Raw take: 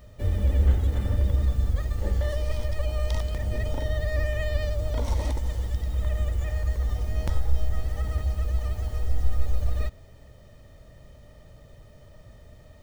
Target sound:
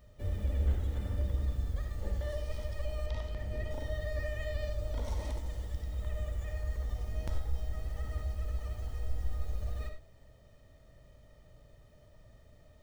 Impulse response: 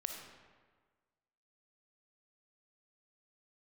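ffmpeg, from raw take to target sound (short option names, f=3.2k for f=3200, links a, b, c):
-filter_complex "[1:a]atrim=start_sample=2205,afade=t=out:st=0.16:d=0.01,atrim=end_sample=7497[a];[0:a][a]afir=irnorm=-1:irlink=0,asettb=1/sr,asplit=3[b][c][d];[b]atrim=end=3.064[e];[c]atrim=start=3.06:end=3.71,asetpts=PTS-STARTPTS,afade=t=in:d=0.004:c=qsin,afade=t=out:st=0.646:d=0.004:c=qsin,acrossover=split=4600[f][g];[g]acompressor=threshold=-57dB:ratio=4:attack=1:release=60[h];[f][h]amix=inputs=2:normalize=0[i];[d]atrim=start=3.706[j];[e][i]acrossfade=d=0.004:c1=hsin:c2=qsin[k];[k][j]acrossfade=d=0.004:c1=qsin:c2=hsin,volume=-7.5dB"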